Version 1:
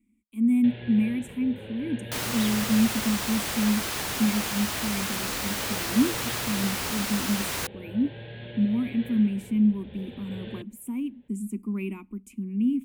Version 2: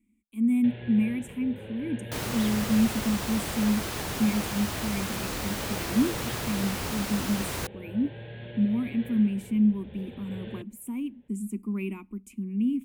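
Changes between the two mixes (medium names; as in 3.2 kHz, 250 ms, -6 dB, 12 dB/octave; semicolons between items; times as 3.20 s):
first sound: add distance through air 200 m; second sound: add tilt shelf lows +5 dB, about 650 Hz; master: add peaking EQ 260 Hz -2.5 dB 0.41 oct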